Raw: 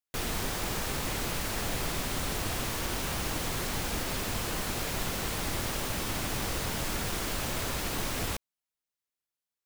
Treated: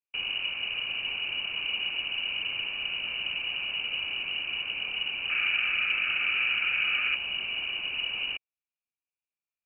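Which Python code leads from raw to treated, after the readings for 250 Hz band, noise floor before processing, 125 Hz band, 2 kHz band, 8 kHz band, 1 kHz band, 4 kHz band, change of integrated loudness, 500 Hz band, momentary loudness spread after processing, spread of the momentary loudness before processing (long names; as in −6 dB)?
−18.5 dB, below −85 dBFS, below −20 dB, +9.0 dB, below −40 dB, −8.5 dB, +8.5 dB, +4.0 dB, −15.5 dB, 6 LU, 0 LU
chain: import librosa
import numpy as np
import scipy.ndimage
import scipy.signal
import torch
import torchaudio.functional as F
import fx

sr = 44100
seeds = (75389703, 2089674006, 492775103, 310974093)

y = fx.spec_paint(x, sr, seeds[0], shape='noise', start_s=5.29, length_s=1.87, low_hz=220.0, high_hz=1700.0, level_db=-28.0)
y = fx.low_shelf_res(y, sr, hz=700.0, db=8.0, q=3.0)
y = fx.freq_invert(y, sr, carrier_hz=2900)
y = F.gain(torch.from_numpy(y), -8.0).numpy()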